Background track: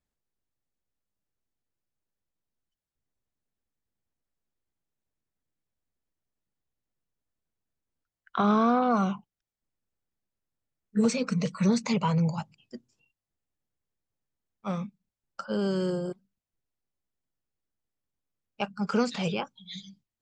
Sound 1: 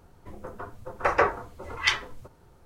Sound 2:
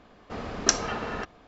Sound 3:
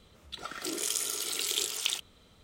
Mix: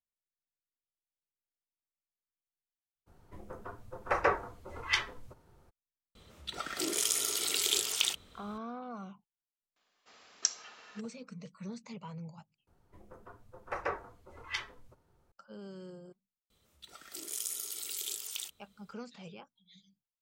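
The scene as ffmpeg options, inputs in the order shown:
-filter_complex "[1:a]asplit=2[a][b];[3:a]asplit=2[c][d];[0:a]volume=-19dB[e];[c]acontrast=53[f];[2:a]aderivative[g];[d]aemphasis=mode=production:type=50kf[h];[e]asplit=2[i][j];[i]atrim=end=12.674[k];[b]atrim=end=2.65,asetpts=PTS-STARTPTS,volume=-13.5dB[l];[j]atrim=start=15.316[m];[a]atrim=end=2.65,asetpts=PTS-STARTPTS,volume=-6dB,afade=t=in:d=0.02,afade=t=out:st=2.63:d=0.02,adelay=3060[n];[f]atrim=end=2.43,asetpts=PTS-STARTPTS,volume=-5dB,afade=t=in:d=0.004:c=hsin,afade=t=out:st=2.426:d=0.004:c=hsin,adelay=6150[o];[g]atrim=end=1.47,asetpts=PTS-STARTPTS,volume=-5.5dB,afade=t=in:d=0.004:c=hsin,afade=t=out:st=1.466:d=0.004:c=hsin,adelay=9760[p];[h]atrim=end=2.43,asetpts=PTS-STARTPTS,volume=-14.5dB,afade=t=in:d=0.004:c=hsin,afade=t=out:st=2.426:d=0.004:c=hsin,adelay=16500[q];[k][l]acrossfade=d=0.004:c1=hsin:c2=hsin[r];[r][m]acrossfade=d=0.004:c1=hsin:c2=hsin[s];[s][n][o][p][q]amix=inputs=5:normalize=0"

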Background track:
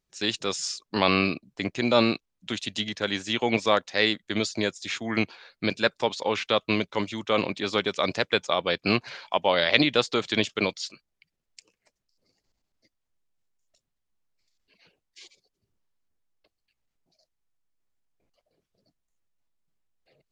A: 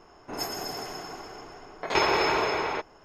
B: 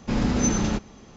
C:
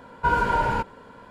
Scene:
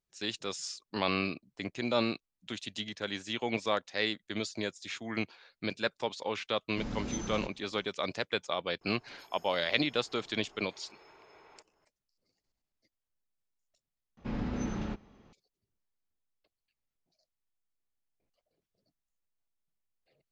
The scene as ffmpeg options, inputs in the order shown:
-filter_complex "[2:a]asplit=2[a][b];[0:a]volume=-8.5dB[c];[1:a]acompressor=threshold=-39dB:ratio=16:attack=0.27:release=327:knee=1:detection=rms[d];[b]lowpass=3.2k[e];[c]asplit=2[f][g];[f]atrim=end=14.174[h];[e]atrim=end=1.16,asetpts=PTS-STARTPTS,volume=-11.5dB[i];[g]atrim=start=15.326[j];[a]atrim=end=1.16,asetpts=PTS-STARTPTS,volume=-15dB,afade=t=in:d=0.004:c=hsin,afade=t=out:st=1.156:d=0.004:c=hsin,adelay=6690[k];[d]atrim=end=3.04,asetpts=PTS-STARTPTS,volume=-11.5dB,afade=t=in:d=0.004:c=hsin,afade=t=out:st=3.036:d=0.004:c=hsin,adelay=8810[l];[h][i]acrossfade=d=0.004:c1=hsin:c2=hsin[m];[m][j]acrossfade=d=0.004:c1=hsin:c2=hsin[n];[n][k][l]amix=inputs=3:normalize=0"

